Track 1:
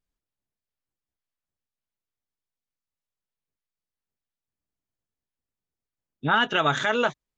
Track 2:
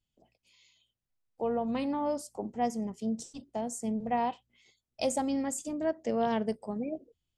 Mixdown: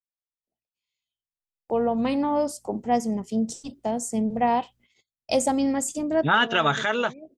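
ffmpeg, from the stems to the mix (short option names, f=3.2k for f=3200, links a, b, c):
-filter_complex "[0:a]volume=-10.5dB,asplit=2[a][b];[1:a]adelay=300,volume=-4.5dB[c];[b]apad=whole_len=338594[d];[c][d]sidechaincompress=threshold=-45dB:ratio=8:attack=24:release=371[e];[a][e]amix=inputs=2:normalize=0,dynaudnorm=f=330:g=7:m=12dB,agate=range=-23dB:threshold=-54dB:ratio=16:detection=peak"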